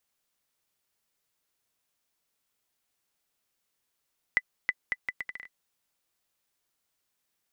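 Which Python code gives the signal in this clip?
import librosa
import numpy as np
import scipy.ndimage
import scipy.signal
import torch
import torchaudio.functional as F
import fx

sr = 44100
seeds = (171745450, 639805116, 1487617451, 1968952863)

y = fx.bouncing_ball(sr, first_gap_s=0.32, ratio=0.72, hz=2000.0, decay_ms=44.0, level_db=-11.0)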